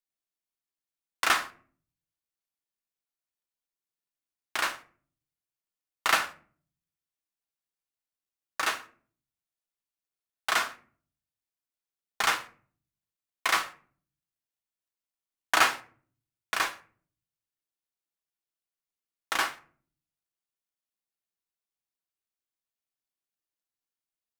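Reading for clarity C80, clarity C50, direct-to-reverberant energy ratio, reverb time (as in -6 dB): 20.5 dB, 17.0 dB, 7.0 dB, 0.45 s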